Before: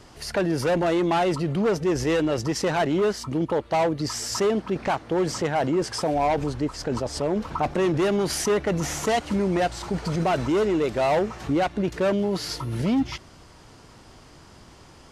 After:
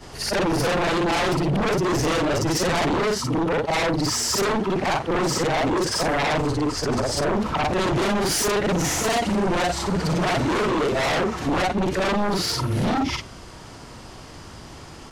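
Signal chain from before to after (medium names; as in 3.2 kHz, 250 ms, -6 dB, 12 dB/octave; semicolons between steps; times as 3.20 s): short-time spectra conjugated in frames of 127 ms; sine folder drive 10 dB, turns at -16 dBFS; trim -2.5 dB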